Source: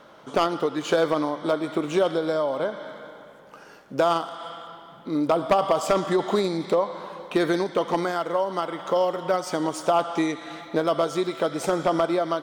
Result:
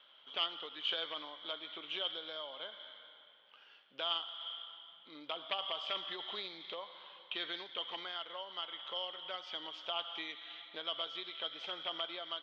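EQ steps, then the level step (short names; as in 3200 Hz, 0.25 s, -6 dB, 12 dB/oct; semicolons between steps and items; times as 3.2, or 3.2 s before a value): band-pass 3200 Hz, Q 9.3; air absorption 260 m; +10.5 dB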